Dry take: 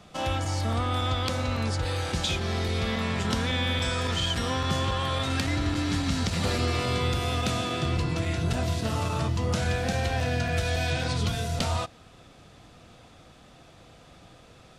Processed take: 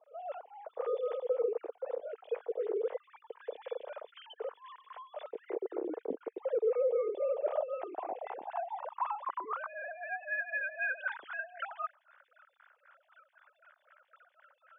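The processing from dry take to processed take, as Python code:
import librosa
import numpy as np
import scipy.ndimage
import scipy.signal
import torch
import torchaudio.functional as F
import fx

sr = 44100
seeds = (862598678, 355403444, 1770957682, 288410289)

y = fx.sine_speech(x, sr)
y = fx.filter_sweep_bandpass(y, sr, from_hz=460.0, to_hz=1500.0, start_s=6.55, end_s=10.42, q=6.0)
y = fx.stagger_phaser(y, sr, hz=3.9)
y = y * librosa.db_to_amplitude(2.5)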